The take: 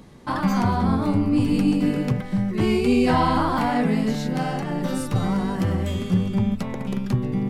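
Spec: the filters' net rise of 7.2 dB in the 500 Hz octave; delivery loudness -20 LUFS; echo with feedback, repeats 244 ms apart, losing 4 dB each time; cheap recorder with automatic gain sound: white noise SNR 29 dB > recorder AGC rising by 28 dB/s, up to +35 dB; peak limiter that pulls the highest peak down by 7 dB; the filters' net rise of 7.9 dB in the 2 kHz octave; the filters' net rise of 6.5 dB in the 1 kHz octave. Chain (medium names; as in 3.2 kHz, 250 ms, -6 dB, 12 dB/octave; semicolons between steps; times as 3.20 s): peaking EQ 500 Hz +8 dB; peaking EQ 1 kHz +3.5 dB; peaking EQ 2 kHz +8.5 dB; peak limiter -9 dBFS; feedback delay 244 ms, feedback 63%, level -4 dB; white noise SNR 29 dB; recorder AGC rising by 28 dB/s, up to +35 dB; trim -3 dB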